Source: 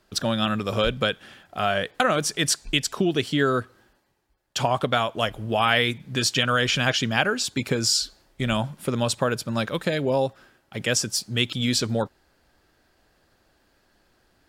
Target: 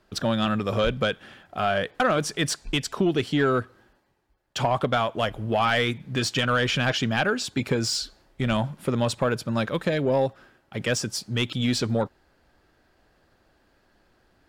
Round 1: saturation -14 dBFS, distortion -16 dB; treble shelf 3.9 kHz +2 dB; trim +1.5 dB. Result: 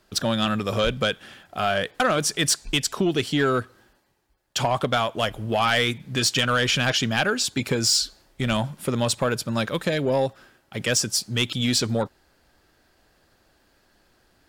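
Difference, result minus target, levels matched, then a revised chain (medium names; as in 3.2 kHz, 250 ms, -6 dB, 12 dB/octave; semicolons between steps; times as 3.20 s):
8 kHz band +6.0 dB
saturation -14 dBFS, distortion -16 dB; treble shelf 3.9 kHz -8.5 dB; trim +1.5 dB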